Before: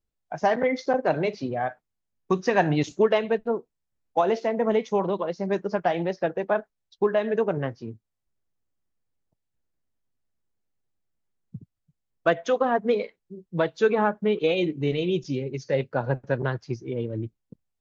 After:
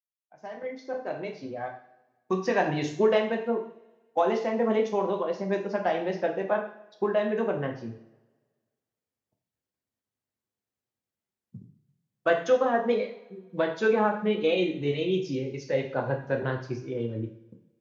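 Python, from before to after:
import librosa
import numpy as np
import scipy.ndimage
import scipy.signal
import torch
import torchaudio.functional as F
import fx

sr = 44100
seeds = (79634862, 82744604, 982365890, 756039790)

y = fx.fade_in_head(x, sr, length_s=2.99)
y = scipy.signal.sosfilt(scipy.signal.butter(2, 59.0, 'highpass', fs=sr, output='sos'), y)
y = fx.low_shelf(y, sr, hz=82.0, db=-8.5)
y = fx.rev_double_slope(y, sr, seeds[0], early_s=0.57, late_s=1.6, knee_db=-20, drr_db=2.0)
y = y * 10.0 ** (-3.5 / 20.0)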